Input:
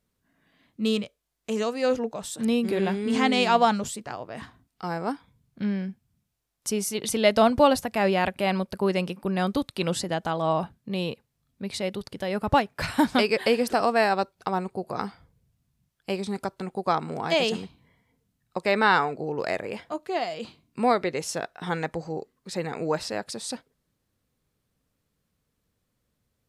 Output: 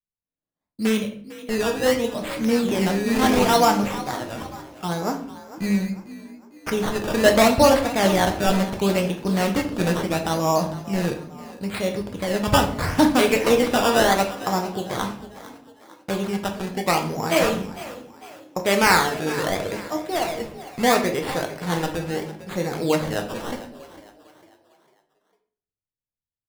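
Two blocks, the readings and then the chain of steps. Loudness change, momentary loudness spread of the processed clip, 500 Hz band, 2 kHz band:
+4.0 dB, 16 LU, +4.0 dB, +4.5 dB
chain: expander -46 dBFS; low shelf 87 Hz +8.5 dB; decimation with a swept rate 14×, swing 100% 0.74 Hz; frequency-shifting echo 0.451 s, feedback 42%, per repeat +46 Hz, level -16 dB; shoebox room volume 74 m³, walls mixed, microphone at 0.5 m; Doppler distortion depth 0.14 ms; gain +2 dB

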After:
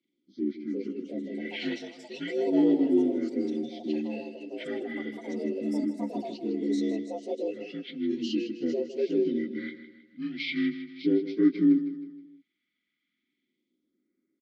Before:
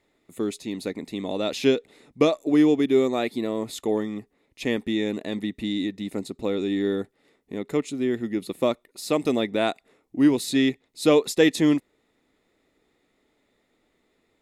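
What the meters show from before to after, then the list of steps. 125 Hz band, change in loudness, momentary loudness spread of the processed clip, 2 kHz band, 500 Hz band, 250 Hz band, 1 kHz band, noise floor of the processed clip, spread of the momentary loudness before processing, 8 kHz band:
-9.5 dB, -5.0 dB, 15 LU, -7.5 dB, -7.0 dB, -3.0 dB, -12.0 dB, -82 dBFS, 13 LU, under -15 dB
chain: inharmonic rescaling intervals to 78%; high shelf 3900 Hz +9.5 dB; comb 5.6 ms, depth 57%; phaser stages 2, 0.37 Hz, lowest notch 350–2900 Hz; in parallel at -10.5 dB: crossover distortion -38 dBFS; on the sum: vowel filter i; echoes that change speed 0.449 s, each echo +5 st, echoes 3, each echo -6 dB; feedback echo 0.158 s, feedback 44%, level -12 dB; gain +4 dB

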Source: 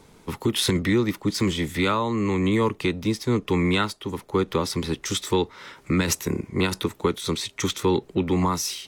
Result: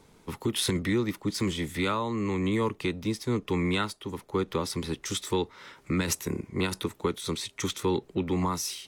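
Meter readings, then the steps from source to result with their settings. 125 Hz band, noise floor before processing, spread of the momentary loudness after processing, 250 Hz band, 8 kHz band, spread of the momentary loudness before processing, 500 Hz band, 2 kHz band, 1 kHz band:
-5.5 dB, -54 dBFS, 6 LU, -5.5 dB, -4.0 dB, 6 LU, -5.5 dB, -5.5 dB, -5.5 dB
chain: dynamic EQ 9700 Hz, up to +4 dB, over -50 dBFS, Q 2.2; gain -5.5 dB

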